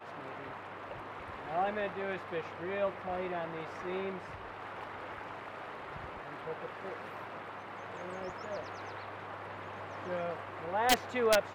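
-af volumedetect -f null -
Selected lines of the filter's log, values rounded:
mean_volume: -37.5 dB
max_volume: -16.2 dB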